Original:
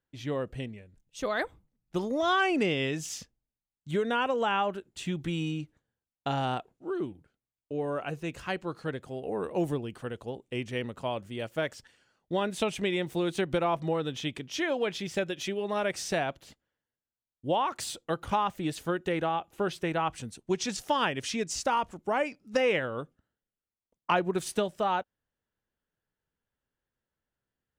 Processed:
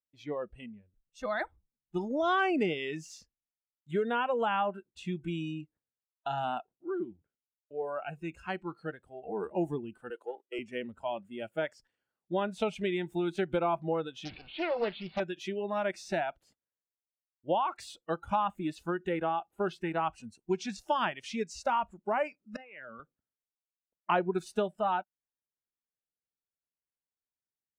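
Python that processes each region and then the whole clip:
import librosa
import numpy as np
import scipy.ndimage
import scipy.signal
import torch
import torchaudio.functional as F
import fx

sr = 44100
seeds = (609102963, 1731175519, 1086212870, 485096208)

y = fx.chain(x, sr, fx.highpass(hz=320.0, slope=24),
    fx.leveller(passes=1), at=(10.1, 10.59))
y = fx.chain(y, sr, fx.delta_mod(bps=64000, step_db=-34.0),
    fx.steep_lowpass(hz=4300.0, slope=96),
    fx.doppler_dist(depth_ms=0.61), at=(14.25, 15.2))
y = fx.chain(y, sr, fx.level_steps(step_db=19),
    fx.air_absorb(metres=150.0),
    fx.band_widen(depth_pct=40), at=(22.56, 23.0))
y = fx.noise_reduce_blind(y, sr, reduce_db=16)
y = fx.lowpass(y, sr, hz=1700.0, slope=6)
y = fx.low_shelf(y, sr, hz=150.0, db=-6.0)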